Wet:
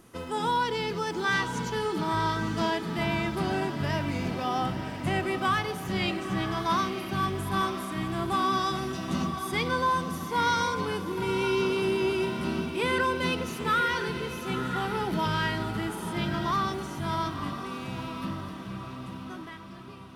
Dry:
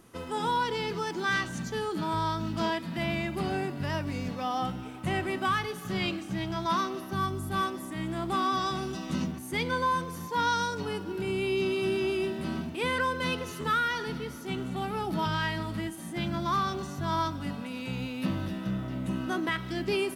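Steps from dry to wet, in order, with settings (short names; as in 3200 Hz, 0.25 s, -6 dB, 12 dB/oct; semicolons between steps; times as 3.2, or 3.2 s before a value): ending faded out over 4.18 s; diffused feedback echo 0.967 s, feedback 51%, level -8.5 dB; gain +1.5 dB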